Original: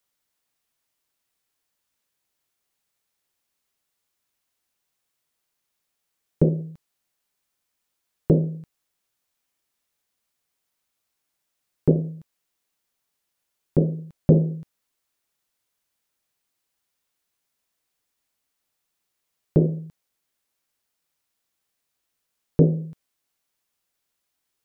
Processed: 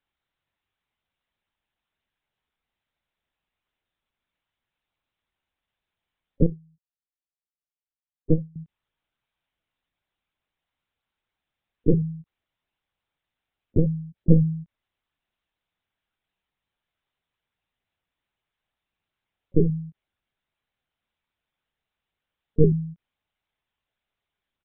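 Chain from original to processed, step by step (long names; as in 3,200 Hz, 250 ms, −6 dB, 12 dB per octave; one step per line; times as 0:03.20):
gate on every frequency bin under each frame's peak −15 dB strong
double-tracking delay 13 ms −7 dB
linear-prediction vocoder at 8 kHz pitch kept
0:06.46–0:08.56: expander for the loud parts 2.5 to 1, over −26 dBFS
level −1 dB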